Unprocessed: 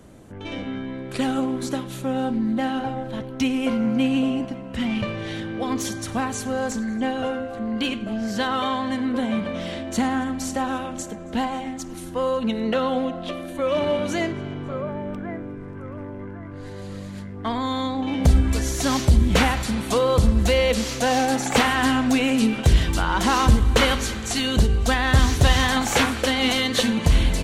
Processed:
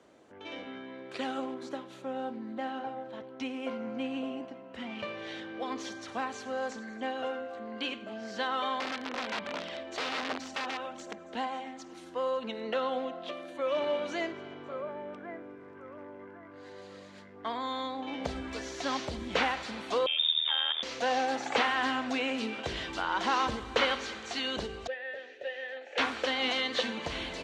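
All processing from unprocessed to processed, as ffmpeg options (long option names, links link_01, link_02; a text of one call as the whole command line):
ffmpeg -i in.wav -filter_complex "[0:a]asettb=1/sr,asplit=3[link_01][link_02][link_03];[link_01]atrim=end=1.544[link_04];[link_02]atrim=start=1.54:end=4.99,asetpts=PTS-STARTPTS,afade=type=in:duration=0.004:curve=qsin,afade=type=out:start_time=3.446:duration=0.004:curve=qsin,lowpass=frequency=1400:poles=1,aemphasis=mode=production:type=50fm[link_05];[link_03]atrim=start=4.986[link_06];[link_04][link_05]acrossfade=duration=0.004:curve1=hsin:curve2=qsin[link_07];[link_07][link_06]acrossfade=duration=0.004:curve1=qsin:curve2=hsin,asettb=1/sr,asplit=3[link_08][link_09][link_10];[link_08]atrim=end=8.804[link_11];[link_09]atrim=start=8.8:end=11.29,asetpts=PTS-STARTPTS,afade=type=in:duration=0.004:curve=qsin,afade=type=out:start_time=2.486:duration=0.004:curve=qsin,aphaser=in_gain=1:out_gain=1:delay=2.7:decay=0.34:speed=1.3:type=triangular,aeval=exprs='(mod(9.44*val(0)+1,2)-1)/9.44':channel_layout=same[link_12];[link_10]atrim=start=11.286[link_13];[link_11][link_12]acrossfade=duration=0.004:curve1=hsin:curve2=qsin[link_14];[link_14][link_13]acrossfade=duration=0.004:curve1=qsin:curve2=hsin,asettb=1/sr,asplit=3[link_15][link_16][link_17];[link_15]atrim=end=20.064[link_18];[link_16]atrim=start=20.06:end=20.83,asetpts=PTS-STARTPTS,afade=type=in:duration=0.004:curve=qsin,afade=type=out:start_time=0.766:duration=0.004:curve=qsin,lowpass=frequency=3100:width_type=q:width=0.5098,lowpass=frequency=3100:width_type=q:width=0.6013,lowpass=frequency=3100:width_type=q:width=0.9,lowpass=frequency=3100:width_type=q:width=2.563,afreqshift=-3700,tremolo=f=79:d=0.857[link_19];[link_17]atrim=start=20.826[link_20];[link_18][link_19]acrossfade=duration=0.004:curve1=hsin:curve2=qsin[link_21];[link_21][link_20]acrossfade=duration=0.004:curve1=qsin:curve2=hsin,asettb=1/sr,asplit=3[link_22][link_23][link_24];[link_22]atrim=end=24.874[link_25];[link_23]atrim=start=24.87:end=25.98,asetpts=PTS-STARTPTS,afade=type=in:duration=0.004:curve=qsin,afade=type=out:start_time=1.106:duration=0.004:curve=qsin,asplit=3[link_26][link_27][link_28];[link_26]bandpass=frequency=530:width_type=q:width=8,volume=0dB[link_29];[link_27]bandpass=frequency=1840:width_type=q:width=8,volume=-6dB[link_30];[link_28]bandpass=frequency=2480:width_type=q:width=8,volume=-9dB[link_31];[link_29][link_30][link_31]amix=inputs=3:normalize=0,bass=frequency=250:gain=-6,treble=frequency=4000:gain=-5[link_32];[link_24]atrim=start=25.976[link_33];[link_25][link_32]acrossfade=duration=0.004:curve1=hsin:curve2=qsin[link_34];[link_34][link_33]acrossfade=duration=0.004:curve1=qsin:curve2=hsin,highpass=61,acrossover=split=5600[link_35][link_36];[link_36]acompressor=threshold=-43dB:ratio=4:attack=1:release=60[link_37];[link_35][link_37]amix=inputs=2:normalize=0,acrossover=split=310 6900:gain=0.112 1 0.0891[link_38][link_39][link_40];[link_38][link_39][link_40]amix=inputs=3:normalize=0,volume=-7dB" out.wav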